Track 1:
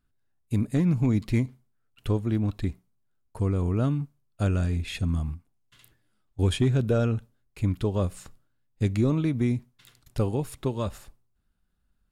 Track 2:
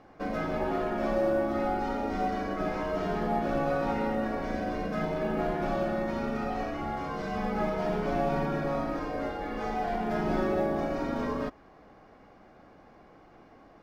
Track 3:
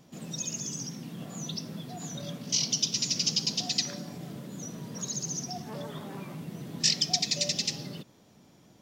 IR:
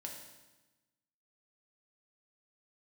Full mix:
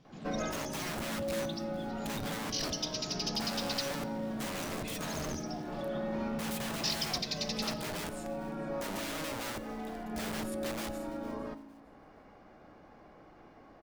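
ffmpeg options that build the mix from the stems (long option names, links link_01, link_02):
-filter_complex "[0:a]aeval=exprs='(mod(33.5*val(0)+1,2)-1)/33.5':channel_layout=same,volume=-6dB,asplit=4[link_01][link_02][link_03][link_04];[link_02]volume=-8.5dB[link_05];[link_03]volume=-19.5dB[link_06];[1:a]alimiter=limit=-24dB:level=0:latency=1:release=498,adelay=50,volume=-3.5dB,asplit=2[link_07][link_08];[link_08]volume=-5.5dB[link_09];[2:a]lowpass=frequency=5300:width=0.5412,lowpass=frequency=5300:width=1.3066,volume=-5dB[link_10];[link_04]apad=whole_len=611740[link_11];[link_07][link_11]sidechaincompress=threshold=-56dB:ratio=8:attack=16:release=991[link_12];[3:a]atrim=start_sample=2205[link_13];[link_05][link_09]amix=inputs=2:normalize=0[link_14];[link_14][link_13]afir=irnorm=-1:irlink=0[link_15];[link_06]aecho=0:1:456|912|1368|1824:1|0.26|0.0676|0.0176[link_16];[link_01][link_12][link_10][link_15][link_16]amix=inputs=5:normalize=0,asoftclip=type=tanh:threshold=-22.5dB"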